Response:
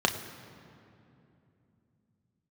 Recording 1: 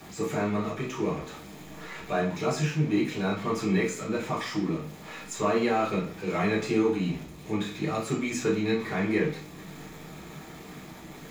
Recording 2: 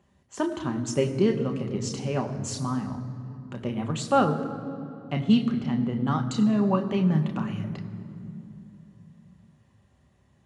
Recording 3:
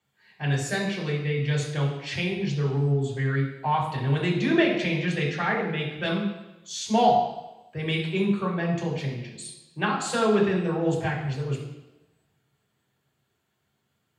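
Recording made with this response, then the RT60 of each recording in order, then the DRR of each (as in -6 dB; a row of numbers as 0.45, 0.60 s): 2; 0.45, 2.8, 1.0 s; -7.5, 4.0, -5.0 dB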